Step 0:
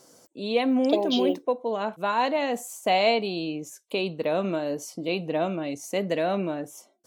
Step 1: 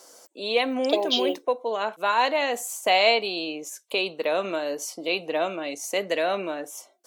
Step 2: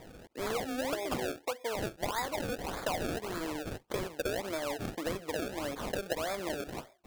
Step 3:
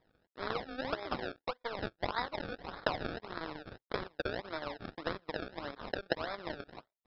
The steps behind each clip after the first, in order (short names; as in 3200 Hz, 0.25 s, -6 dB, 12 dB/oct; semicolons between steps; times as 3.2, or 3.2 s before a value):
HPF 510 Hz 12 dB/oct; dynamic EQ 750 Hz, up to -4 dB, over -38 dBFS, Q 1.1; gain +6 dB
compressor 6:1, threshold -32 dBFS, peak gain reduction 16 dB; decimation with a swept rate 30×, swing 100% 1.7 Hz
power-law curve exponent 2; rippled Chebyshev low-pass 5300 Hz, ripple 6 dB; gain +10 dB